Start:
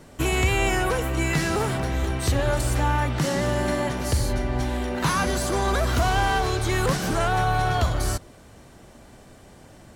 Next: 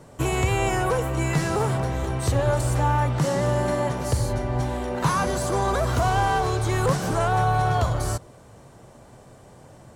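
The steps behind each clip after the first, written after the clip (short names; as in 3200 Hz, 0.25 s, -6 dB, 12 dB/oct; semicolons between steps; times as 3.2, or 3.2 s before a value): ten-band EQ 125 Hz +10 dB, 500 Hz +7 dB, 1000 Hz +7 dB, 8000 Hz +5 dB; gain -6 dB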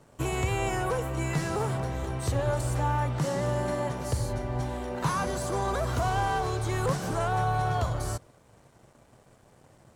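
crossover distortion -53 dBFS; gain -5.5 dB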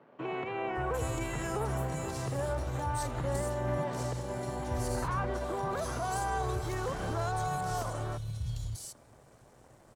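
limiter -24.5 dBFS, peak gain reduction 9 dB; three bands offset in time mids, lows, highs 0.58/0.75 s, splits 170/3000 Hz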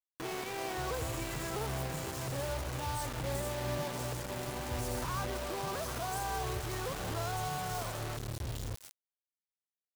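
requantised 6-bit, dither none; gain -4 dB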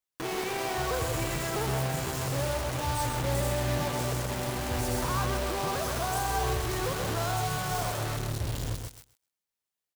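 feedback echo 0.129 s, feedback 16%, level -5.5 dB; gain +5.5 dB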